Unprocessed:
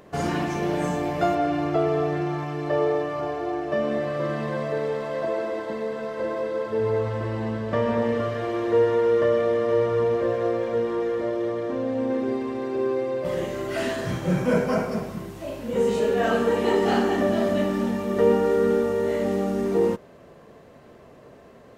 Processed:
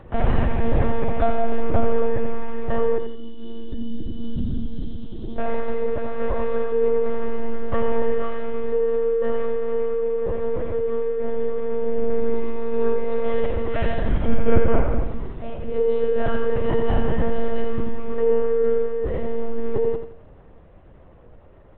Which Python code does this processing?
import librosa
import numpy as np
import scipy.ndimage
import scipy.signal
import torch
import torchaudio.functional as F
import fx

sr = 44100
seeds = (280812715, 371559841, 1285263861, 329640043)

y = fx.spec_box(x, sr, start_s=2.98, length_s=2.4, low_hz=350.0, high_hz=2700.0, gain_db=-27)
y = fx.lpc_monotone(y, sr, seeds[0], pitch_hz=230.0, order=10)
y = fx.high_shelf(y, sr, hz=3100.0, db=-7.5)
y = fx.echo_feedback(y, sr, ms=85, feedback_pct=34, wet_db=-8.0)
y = fx.rider(y, sr, range_db=5, speed_s=2.0)
y = fx.low_shelf(y, sr, hz=120.0, db=10.0)
y = y * librosa.db_to_amplitude(-2.0)